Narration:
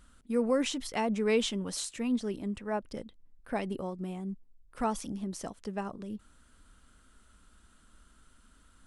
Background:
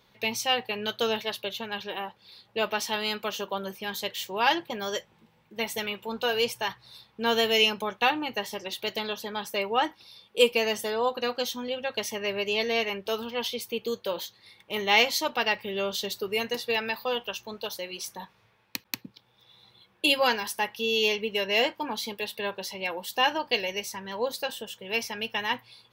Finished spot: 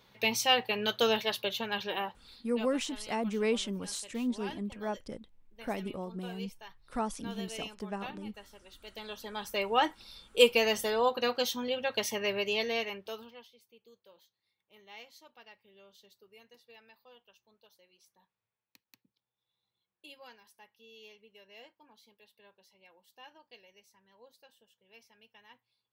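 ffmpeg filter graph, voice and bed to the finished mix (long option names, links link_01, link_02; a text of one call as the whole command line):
ffmpeg -i stem1.wav -i stem2.wav -filter_complex "[0:a]adelay=2150,volume=-2.5dB[link_01];[1:a]volume=19dB,afade=type=out:start_time=2.01:duration=0.7:silence=0.1,afade=type=in:start_time=8.83:duration=1.03:silence=0.112202,afade=type=out:start_time=12.18:duration=1.29:silence=0.0398107[link_02];[link_01][link_02]amix=inputs=2:normalize=0" out.wav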